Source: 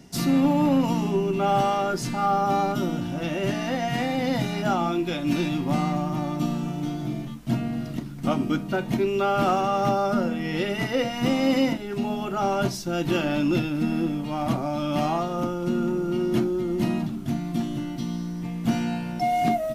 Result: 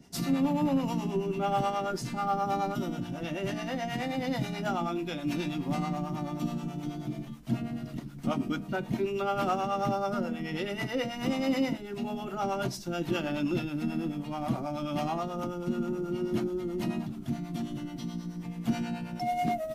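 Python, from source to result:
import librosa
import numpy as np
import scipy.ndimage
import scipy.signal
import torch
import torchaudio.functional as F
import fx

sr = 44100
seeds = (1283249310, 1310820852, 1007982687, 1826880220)

y = fx.harmonic_tremolo(x, sr, hz=9.3, depth_pct=70, crossover_hz=470.0)
y = F.gain(torch.from_numpy(y), -3.5).numpy()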